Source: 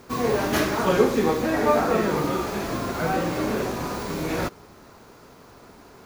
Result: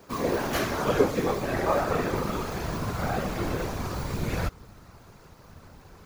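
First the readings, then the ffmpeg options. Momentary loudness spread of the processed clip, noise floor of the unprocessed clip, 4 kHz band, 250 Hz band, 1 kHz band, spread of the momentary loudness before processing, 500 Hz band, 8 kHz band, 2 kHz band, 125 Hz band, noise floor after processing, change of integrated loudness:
8 LU, -49 dBFS, -4.0 dB, -5.5 dB, -4.5 dB, 8 LU, -5.0 dB, -4.0 dB, -4.0 dB, 0.0 dB, -52 dBFS, -4.5 dB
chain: -af "asubboost=boost=7.5:cutoff=96,afftfilt=real='hypot(re,im)*cos(2*PI*random(0))':imag='hypot(re,im)*sin(2*PI*random(1))':win_size=512:overlap=0.75,volume=1.26"

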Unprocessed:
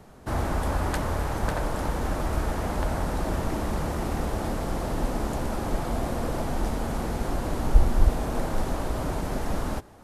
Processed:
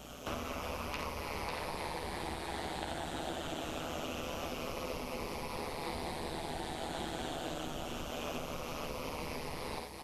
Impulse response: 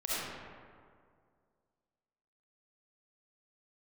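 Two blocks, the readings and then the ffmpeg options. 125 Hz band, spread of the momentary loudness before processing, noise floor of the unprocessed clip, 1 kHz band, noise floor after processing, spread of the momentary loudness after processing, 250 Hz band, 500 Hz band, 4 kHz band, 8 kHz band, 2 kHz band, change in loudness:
-17.5 dB, 5 LU, -32 dBFS, -8.5 dB, -44 dBFS, 2 LU, -12.0 dB, -9.0 dB, -0.5 dB, -7.0 dB, -6.0 dB, -11.0 dB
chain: -filter_complex "[0:a]afftfilt=real='re*pow(10,8/40*sin(2*PI*(0.87*log(max(b,1)*sr/1024/100)/log(2)-(-0.25)*(pts-256)/sr)))':imag='im*pow(10,8/40*sin(2*PI*(0.87*log(max(b,1)*sr/1024/100)/log(2)-(-0.25)*(pts-256)/sr)))':win_size=1024:overlap=0.75,asplit=2[s0][s1];[s1]adelay=12,volume=0.596[s2];[s0][s2]amix=inputs=2:normalize=0,acrossover=split=190[s3][s4];[s3]alimiter=limit=0.1:level=0:latency=1:release=471[s5];[s4]aecho=1:1:51|55|67|86|401:0.562|0.168|0.126|0.376|0.126[s6];[s5][s6]amix=inputs=2:normalize=0,acompressor=threshold=0.0224:ratio=16,aeval=exprs='val(0)+0.00447*(sin(2*PI*60*n/s)+sin(2*PI*2*60*n/s)/2+sin(2*PI*3*60*n/s)/3+sin(2*PI*4*60*n/s)/4+sin(2*PI*5*60*n/s)/5)':c=same,tremolo=f=150:d=0.788,aexciter=amount=6:drive=4.7:freq=2400,bass=f=250:g=-7,treble=f=4000:g=-12,acrossover=split=4500[s7][s8];[s8]acompressor=threshold=0.002:ratio=4:attack=1:release=60[s9];[s7][s9]amix=inputs=2:normalize=0,volume=1.33"

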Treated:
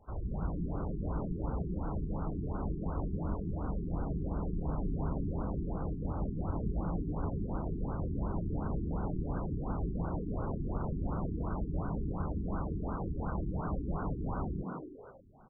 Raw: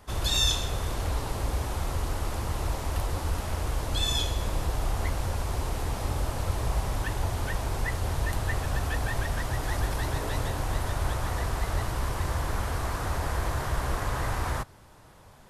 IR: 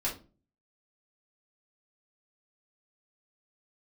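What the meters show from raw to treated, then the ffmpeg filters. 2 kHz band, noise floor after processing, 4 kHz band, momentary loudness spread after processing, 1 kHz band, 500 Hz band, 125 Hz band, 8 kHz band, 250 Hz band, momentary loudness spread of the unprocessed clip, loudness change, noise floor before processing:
-21.0 dB, -43 dBFS, under -40 dB, 2 LU, -9.0 dB, -5.0 dB, -5.5 dB, under -40 dB, +3.5 dB, 4 LU, -6.5 dB, -52 dBFS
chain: -filter_complex "[0:a]asplit=8[s0][s1][s2][s3][s4][s5][s6][s7];[s1]adelay=159,afreqshift=120,volume=0.631[s8];[s2]adelay=318,afreqshift=240,volume=0.324[s9];[s3]adelay=477,afreqshift=360,volume=0.164[s10];[s4]adelay=636,afreqshift=480,volume=0.0841[s11];[s5]adelay=795,afreqshift=600,volume=0.0427[s12];[s6]adelay=954,afreqshift=720,volume=0.0219[s13];[s7]adelay=1113,afreqshift=840,volume=0.0111[s14];[s0][s8][s9][s10][s11][s12][s13][s14]amix=inputs=8:normalize=0,afftfilt=real='re*lt(b*sr/1024,410*pow(1600/410,0.5+0.5*sin(2*PI*2.8*pts/sr)))':imag='im*lt(b*sr/1024,410*pow(1600/410,0.5+0.5*sin(2*PI*2.8*pts/sr)))':win_size=1024:overlap=0.75,volume=0.422"

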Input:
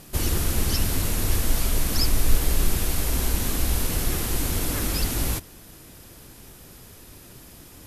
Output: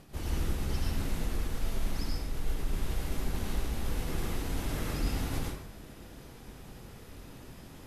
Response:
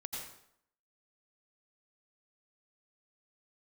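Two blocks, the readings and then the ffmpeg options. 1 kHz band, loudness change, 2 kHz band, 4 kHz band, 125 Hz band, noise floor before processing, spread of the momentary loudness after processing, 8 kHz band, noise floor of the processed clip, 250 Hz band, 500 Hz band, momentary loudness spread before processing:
-7.5 dB, -10.5 dB, -9.5 dB, -13.0 dB, -8.0 dB, -47 dBFS, 15 LU, -17.5 dB, -50 dBFS, -7.0 dB, -7.5 dB, 21 LU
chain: -filter_complex "[0:a]lowpass=f=2500:p=1,areverse,acompressor=threshold=0.0398:ratio=4,areverse[s0];[1:a]atrim=start_sample=2205[s1];[s0][s1]afir=irnorm=-1:irlink=0"

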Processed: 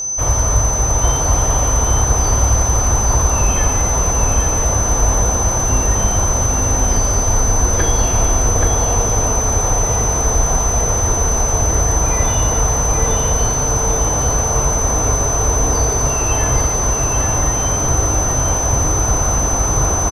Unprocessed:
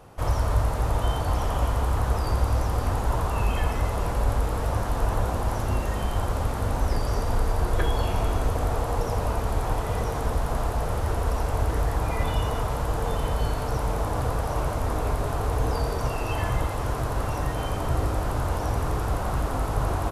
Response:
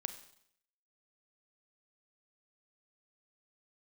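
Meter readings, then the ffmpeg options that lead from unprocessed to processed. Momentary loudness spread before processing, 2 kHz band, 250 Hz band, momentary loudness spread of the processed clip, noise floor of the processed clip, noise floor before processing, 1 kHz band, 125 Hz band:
2 LU, +8.0 dB, +8.5 dB, 1 LU, -18 dBFS, -29 dBFS, +8.0 dB, +8.5 dB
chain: -filter_complex "[0:a]aecho=1:1:826:0.596,aeval=exprs='val(0)+0.0447*sin(2*PI*6100*n/s)':c=same,asplit=2[s0][s1];[1:a]atrim=start_sample=2205[s2];[s1][s2]afir=irnorm=-1:irlink=0,volume=0.794[s3];[s0][s3]amix=inputs=2:normalize=0,volume=1.33"

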